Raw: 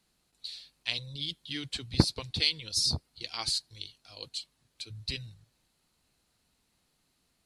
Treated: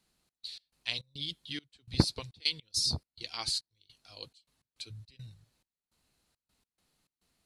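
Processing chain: trance gate "xx.x.xx.xxx..x" 104 bpm -24 dB; trim -2 dB

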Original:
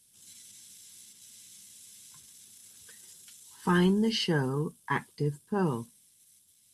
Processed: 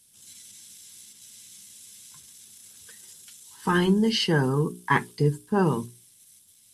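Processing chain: in parallel at 0 dB: gain riding 0.5 s; on the sum: hum notches 60/120/180/240/300/360/420 Hz

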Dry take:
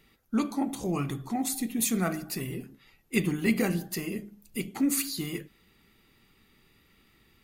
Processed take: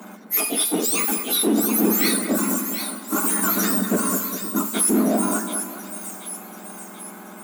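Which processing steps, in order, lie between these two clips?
spectrum inverted on a logarithmic axis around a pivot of 1.7 kHz; power-law waveshaper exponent 0.7; steep high-pass 170 Hz 96 dB/octave; peak limiter -19.5 dBFS, peak gain reduction 11 dB; on a send: two-band feedback delay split 2.1 kHz, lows 203 ms, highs 734 ms, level -7.5 dB; on the sum: trim +8 dB

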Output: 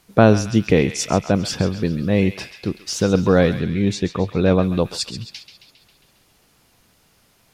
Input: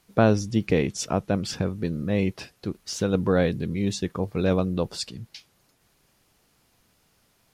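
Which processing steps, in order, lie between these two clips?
3.60–4.63 s: treble shelf 6.8 kHz -10.5 dB; on a send: band-passed feedback delay 135 ms, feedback 66%, band-pass 3 kHz, level -9 dB; on the sum: trim +6.5 dB

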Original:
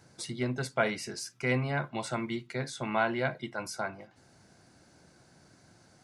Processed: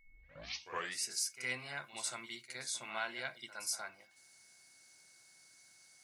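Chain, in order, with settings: tape start-up on the opening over 1.04 s; pre-emphasis filter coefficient 0.97; reverse echo 63 ms -12 dB; whistle 2.2 kHz -72 dBFS; trim +5 dB

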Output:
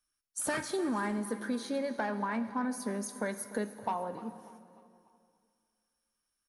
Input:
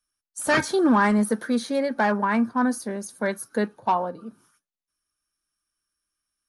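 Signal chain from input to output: compression, threshold -29 dBFS, peak gain reduction 13 dB; feedback delay 297 ms, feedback 45%, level -17.5 dB; plate-style reverb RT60 2.4 s, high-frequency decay 0.9×, DRR 11.5 dB; trim -2 dB

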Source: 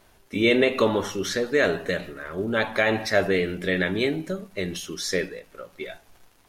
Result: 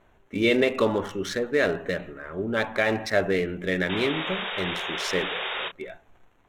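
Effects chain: local Wiener filter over 9 samples; 3.89–5.69 s: painted sound noise 350–3800 Hz -30 dBFS; 5.32–5.72 s: doubling 29 ms -7.5 dB; trim -1.5 dB

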